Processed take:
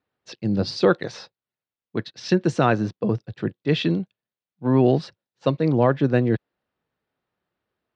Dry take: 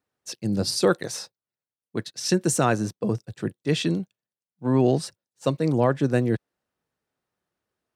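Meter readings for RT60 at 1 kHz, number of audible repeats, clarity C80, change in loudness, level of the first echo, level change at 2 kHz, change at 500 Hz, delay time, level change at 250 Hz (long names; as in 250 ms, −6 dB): no reverb audible, no echo audible, no reverb audible, +2.0 dB, no echo audible, +2.5 dB, +2.5 dB, no echo audible, +2.5 dB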